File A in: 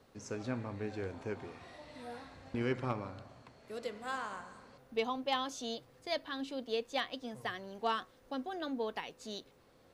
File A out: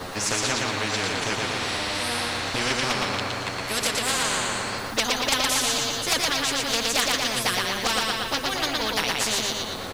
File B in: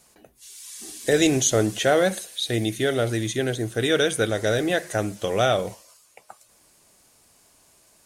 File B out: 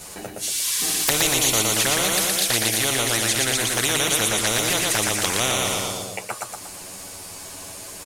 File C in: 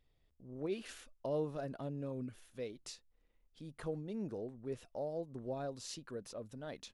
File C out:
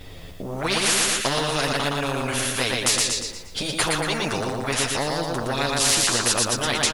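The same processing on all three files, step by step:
touch-sensitive flanger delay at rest 11.3 ms, full sweep at -19 dBFS; on a send: feedback delay 117 ms, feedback 39%, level -4.5 dB; on the sum: spectrum-flattening compressor 4:1; peak normalisation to -3 dBFS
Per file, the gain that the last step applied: +20.0 dB, +3.5 dB, +24.0 dB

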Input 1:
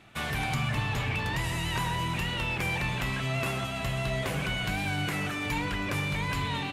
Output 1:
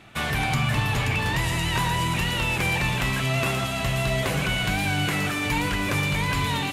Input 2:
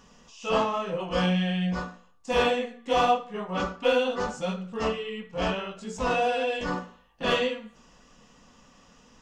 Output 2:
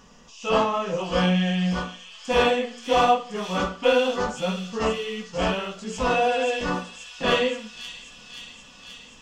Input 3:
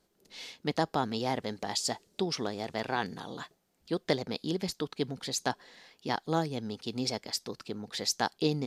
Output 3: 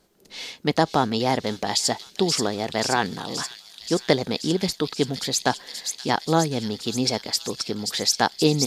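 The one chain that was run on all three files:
feedback echo behind a high-pass 529 ms, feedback 73%, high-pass 4.6 kHz, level -3 dB; normalise loudness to -24 LUFS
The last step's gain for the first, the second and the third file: +6.0 dB, +3.5 dB, +9.0 dB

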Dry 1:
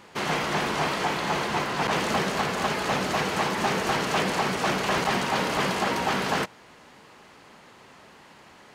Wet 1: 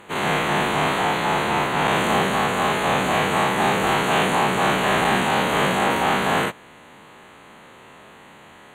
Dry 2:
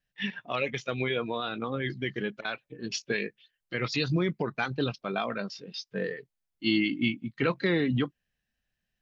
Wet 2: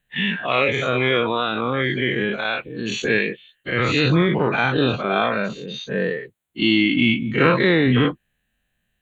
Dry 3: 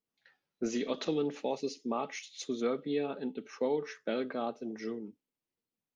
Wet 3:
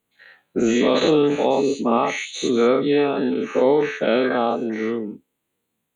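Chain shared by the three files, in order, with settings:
every event in the spectrogram widened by 120 ms; Butterworth band-stop 5.2 kHz, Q 1.9; Chebyshev shaper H 6 -43 dB, 8 -44 dB, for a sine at -7.5 dBFS; normalise loudness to -20 LUFS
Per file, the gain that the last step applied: +0.5 dB, +6.0 dB, +11.0 dB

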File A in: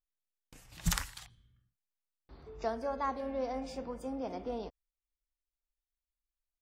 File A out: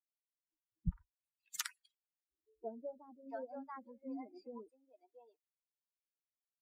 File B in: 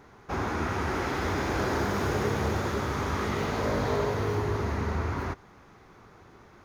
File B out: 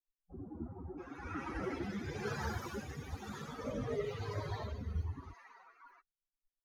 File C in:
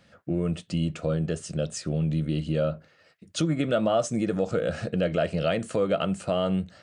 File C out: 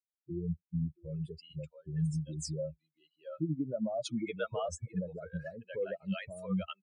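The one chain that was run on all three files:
expander on every frequency bin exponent 3; rotary cabinet horn 1 Hz; bands offset in time lows, highs 680 ms, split 660 Hz; trim -1 dB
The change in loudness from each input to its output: -9.0 LU, -12.5 LU, -10.5 LU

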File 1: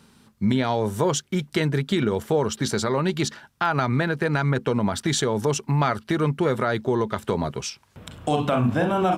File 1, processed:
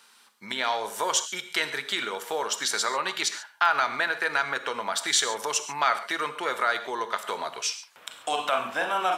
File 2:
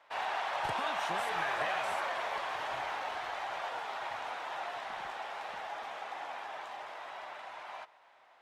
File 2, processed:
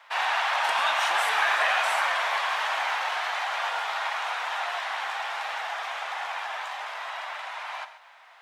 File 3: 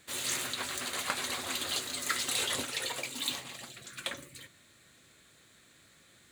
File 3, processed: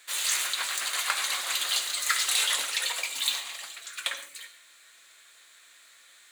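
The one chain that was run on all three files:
high-pass 1 kHz 12 dB/octave; gated-style reverb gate 160 ms flat, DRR 9.5 dB; normalise loudness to -27 LUFS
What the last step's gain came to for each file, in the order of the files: +3.0 dB, +12.0 dB, +6.5 dB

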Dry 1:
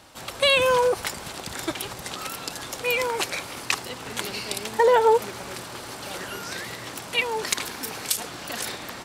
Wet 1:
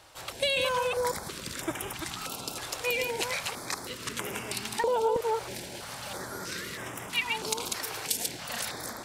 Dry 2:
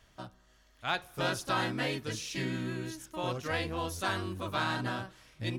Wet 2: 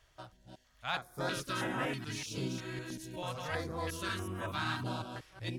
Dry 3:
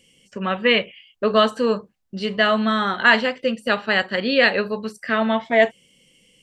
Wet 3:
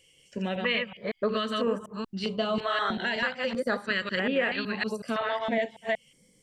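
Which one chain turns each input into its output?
chunks repeated in reverse 186 ms, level -4 dB; compression 5:1, threshold -19 dBFS; step-sequenced notch 3.1 Hz 220–4300 Hz; trim -3.5 dB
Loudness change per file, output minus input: -6.0 LU, -3.5 LU, -9.5 LU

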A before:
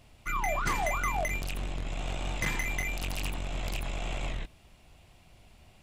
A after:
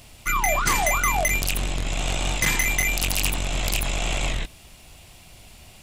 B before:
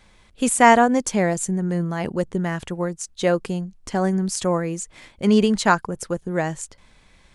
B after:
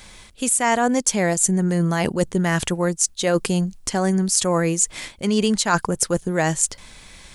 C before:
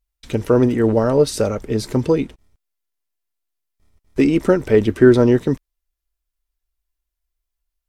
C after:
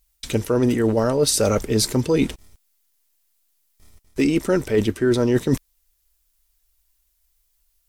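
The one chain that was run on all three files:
treble shelf 3.7 kHz +12 dB; reverse; compression 8:1, threshold -24 dBFS; reverse; trim +8 dB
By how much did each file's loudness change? +10.0 LU, +1.0 LU, -3.5 LU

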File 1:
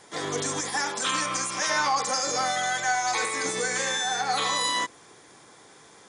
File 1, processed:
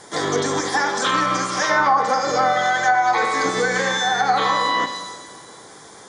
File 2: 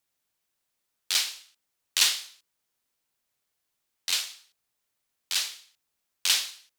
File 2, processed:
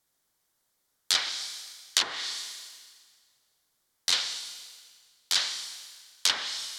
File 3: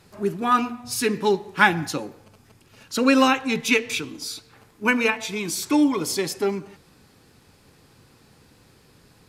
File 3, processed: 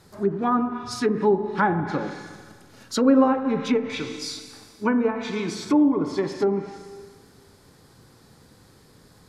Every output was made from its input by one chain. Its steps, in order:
peaking EQ 2.6 kHz -9.5 dB 0.39 oct; Schroeder reverb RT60 1.7 s, combs from 29 ms, DRR 8.5 dB; low-pass that closes with the level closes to 860 Hz, closed at -18 dBFS; peak normalisation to -6 dBFS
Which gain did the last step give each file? +9.0 dB, +6.0 dB, +1.5 dB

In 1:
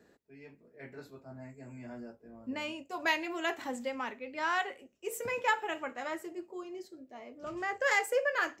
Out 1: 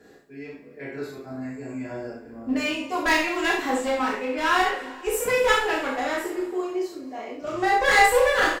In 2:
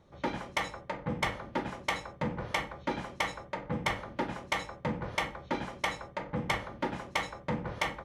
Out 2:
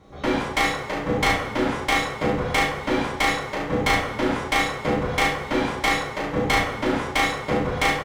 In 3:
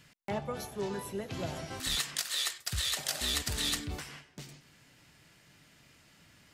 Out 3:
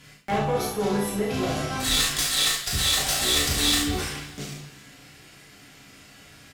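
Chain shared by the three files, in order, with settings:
one-sided clip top -34.5 dBFS; early reflections 35 ms -3.5 dB, 69 ms -6.5 dB; two-slope reverb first 0.29 s, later 2.1 s, from -18 dB, DRR -2.5 dB; normalise loudness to -23 LUFS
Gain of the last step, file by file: +6.5 dB, +7.0 dB, +5.5 dB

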